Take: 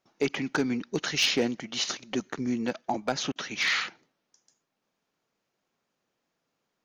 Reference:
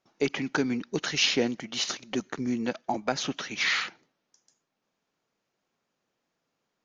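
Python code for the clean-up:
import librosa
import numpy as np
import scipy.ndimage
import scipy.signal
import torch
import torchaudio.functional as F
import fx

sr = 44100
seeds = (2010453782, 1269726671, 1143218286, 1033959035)

y = fx.fix_declip(x, sr, threshold_db=-17.0)
y = fx.fix_interpolate(y, sr, at_s=(3.32,), length_ms=36.0)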